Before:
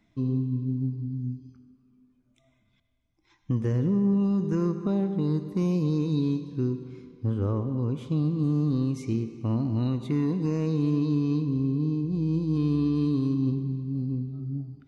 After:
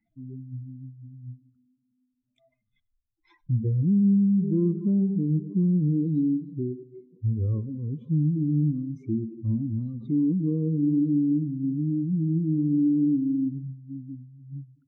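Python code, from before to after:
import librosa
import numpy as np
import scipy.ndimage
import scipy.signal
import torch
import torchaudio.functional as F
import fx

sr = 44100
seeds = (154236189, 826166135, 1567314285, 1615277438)

y = fx.spec_expand(x, sr, power=2.3)
y = fx.noise_reduce_blind(y, sr, reduce_db=16)
y = y * 10.0 ** (3.5 / 20.0)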